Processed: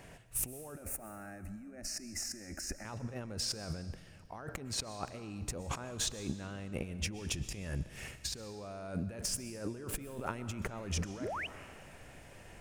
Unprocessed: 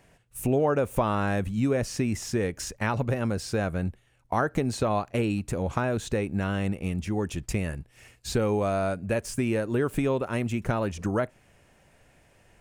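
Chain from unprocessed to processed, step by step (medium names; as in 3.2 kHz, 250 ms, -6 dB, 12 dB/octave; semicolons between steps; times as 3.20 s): dynamic bell 5.3 kHz, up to +6 dB, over -53 dBFS, Q 2.8; compressor with a negative ratio -38 dBFS, ratio -1; 0.76–2.85 s: static phaser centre 680 Hz, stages 8; 11.20–11.47 s: painted sound rise 220–3200 Hz -35 dBFS; reverberation RT60 1.8 s, pre-delay 85 ms, DRR 13 dB; trim -3.5 dB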